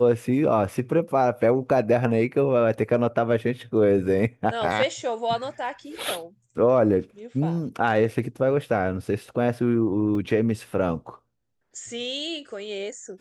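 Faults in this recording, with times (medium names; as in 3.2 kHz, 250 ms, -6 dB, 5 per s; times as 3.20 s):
10.15 s: dropout 2.3 ms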